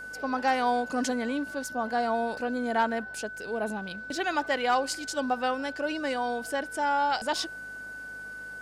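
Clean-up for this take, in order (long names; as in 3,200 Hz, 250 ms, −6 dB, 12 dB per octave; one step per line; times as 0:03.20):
clipped peaks rebuilt −15.5 dBFS
hum removal 51.1 Hz, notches 6
notch filter 1,500 Hz, Q 30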